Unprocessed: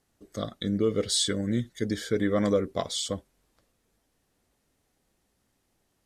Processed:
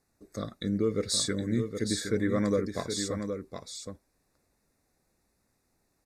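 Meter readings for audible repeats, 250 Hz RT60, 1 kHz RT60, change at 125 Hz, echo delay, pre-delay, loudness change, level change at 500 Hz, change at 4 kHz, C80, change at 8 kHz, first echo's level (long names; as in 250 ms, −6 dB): 1, no reverb audible, no reverb audible, −1.0 dB, 767 ms, no reverb audible, −2.0 dB, −2.5 dB, −3.5 dB, no reverb audible, −0.5 dB, −7.0 dB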